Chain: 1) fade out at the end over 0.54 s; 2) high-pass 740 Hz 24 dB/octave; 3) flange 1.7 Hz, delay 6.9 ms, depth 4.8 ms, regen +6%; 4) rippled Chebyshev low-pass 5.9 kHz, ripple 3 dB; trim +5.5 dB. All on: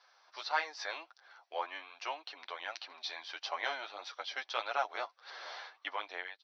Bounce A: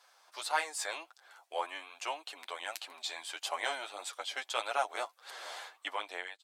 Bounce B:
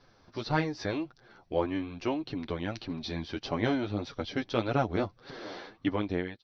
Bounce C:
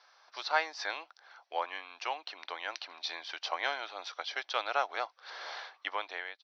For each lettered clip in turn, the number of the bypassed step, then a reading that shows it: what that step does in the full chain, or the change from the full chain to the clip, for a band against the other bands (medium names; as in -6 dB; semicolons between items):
4, 2 kHz band -1.5 dB; 2, 250 Hz band +30.5 dB; 3, loudness change +3.0 LU